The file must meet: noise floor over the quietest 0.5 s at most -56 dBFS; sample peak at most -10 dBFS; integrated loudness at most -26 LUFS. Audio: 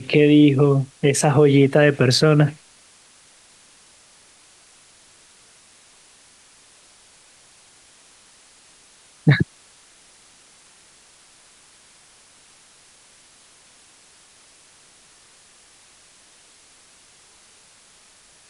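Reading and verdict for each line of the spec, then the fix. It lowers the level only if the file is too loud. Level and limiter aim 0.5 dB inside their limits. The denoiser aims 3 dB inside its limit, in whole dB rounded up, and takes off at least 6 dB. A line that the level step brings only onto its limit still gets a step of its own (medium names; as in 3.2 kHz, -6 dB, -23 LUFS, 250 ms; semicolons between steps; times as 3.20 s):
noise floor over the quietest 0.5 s -52 dBFS: fail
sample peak -4.5 dBFS: fail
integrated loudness -16.5 LUFS: fail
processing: trim -10 dB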